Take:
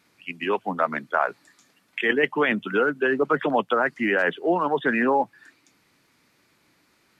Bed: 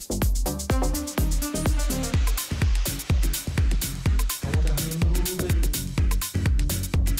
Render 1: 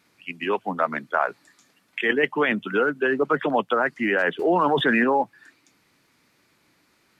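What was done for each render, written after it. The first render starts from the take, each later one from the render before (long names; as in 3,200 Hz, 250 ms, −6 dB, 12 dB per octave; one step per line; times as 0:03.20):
0:04.39–0:05.04: envelope flattener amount 70%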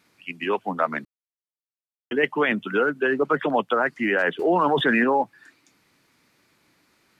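0:01.05–0:02.11: silence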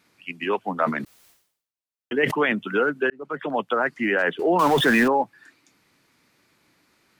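0:00.74–0:02.48: level that may fall only so fast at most 92 dB per second
0:03.10–0:04.04: fade in equal-power
0:04.59–0:05.08: converter with a step at zero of −24.5 dBFS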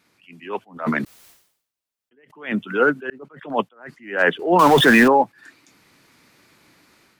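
automatic gain control gain up to 8 dB
level that may rise only so fast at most 150 dB per second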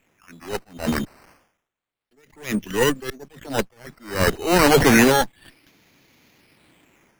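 lower of the sound and its delayed copy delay 0.39 ms
sample-and-hold swept by an LFO 9×, swing 100% 0.29 Hz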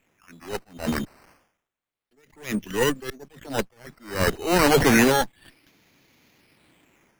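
level −3 dB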